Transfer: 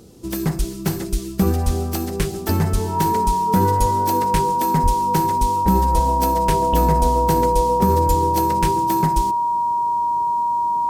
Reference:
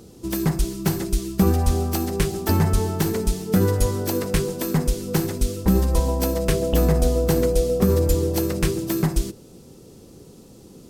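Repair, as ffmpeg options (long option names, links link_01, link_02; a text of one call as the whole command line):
ffmpeg -i in.wav -filter_complex "[0:a]bandreject=frequency=950:width=30,asplit=3[link_01][link_02][link_03];[link_01]afade=type=out:start_time=4.82:duration=0.02[link_04];[link_02]highpass=frequency=140:width=0.5412,highpass=frequency=140:width=1.3066,afade=type=in:start_time=4.82:duration=0.02,afade=type=out:start_time=4.94:duration=0.02[link_05];[link_03]afade=type=in:start_time=4.94:duration=0.02[link_06];[link_04][link_05][link_06]amix=inputs=3:normalize=0" out.wav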